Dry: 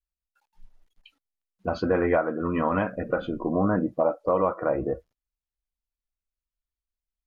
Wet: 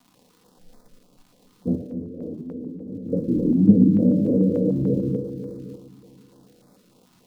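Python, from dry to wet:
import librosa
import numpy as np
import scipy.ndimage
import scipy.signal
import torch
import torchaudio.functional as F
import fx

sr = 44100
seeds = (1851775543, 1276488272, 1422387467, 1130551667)

p1 = scipy.signal.sosfilt(scipy.signal.cheby2(4, 70, [1200.0, 3700.0], 'bandstop', fs=sr, output='sos'), x)
p2 = fx.dmg_crackle(p1, sr, seeds[0], per_s=200.0, level_db=-39.0)
p3 = fx.room_shoebox(p2, sr, seeds[1], volume_m3=480.0, walls='furnished', distance_m=1.9)
p4 = fx.over_compress(p3, sr, threshold_db=-41.0, ratio=-1.0, at=(1.77, 3.11))
p5 = p4 + fx.echo_split(p4, sr, split_hz=510.0, low_ms=263, high_ms=113, feedback_pct=52, wet_db=-4.5, dry=0)
p6 = fx.dynamic_eq(p5, sr, hz=150.0, q=5.5, threshold_db=-41.0, ratio=4.0, max_db=6)
p7 = fx.level_steps(p6, sr, step_db=15)
p8 = p6 + (p7 * librosa.db_to_amplitude(1.0))
p9 = fx.graphic_eq(p8, sr, hz=(125, 250, 500, 1000, 2000, 4000), db=(11, 11, 12, 7, -5, 3))
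p10 = fx.filter_held_notch(p9, sr, hz=6.8, low_hz=500.0, high_hz=2900.0)
y = p10 * librosa.db_to_amplitude(-12.5)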